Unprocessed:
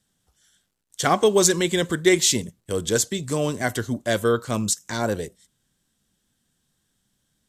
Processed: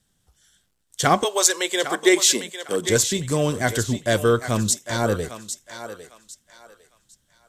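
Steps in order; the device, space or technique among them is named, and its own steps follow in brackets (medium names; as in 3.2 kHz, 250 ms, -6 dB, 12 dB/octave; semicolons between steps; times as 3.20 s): low shelf boost with a cut just above (bass shelf 100 Hz +7 dB; peaking EQ 230 Hz -2 dB); 1.23–2.88 s: high-pass 610 Hz -> 180 Hz 24 dB/octave; thinning echo 803 ms, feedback 29%, high-pass 560 Hz, level -9.5 dB; trim +2 dB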